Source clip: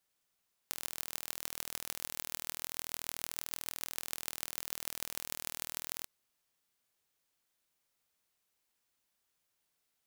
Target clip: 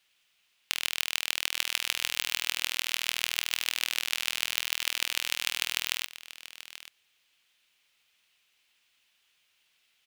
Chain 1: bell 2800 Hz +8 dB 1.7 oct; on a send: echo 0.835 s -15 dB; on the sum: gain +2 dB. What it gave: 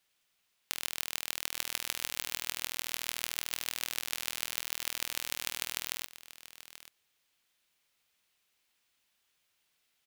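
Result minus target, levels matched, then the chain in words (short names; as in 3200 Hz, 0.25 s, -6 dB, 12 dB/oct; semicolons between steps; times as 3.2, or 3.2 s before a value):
2000 Hz band -2.5 dB
bell 2800 Hz +18.5 dB 1.7 oct; on a send: echo 0.835 s -15 dB; on the sum: gain +2 dB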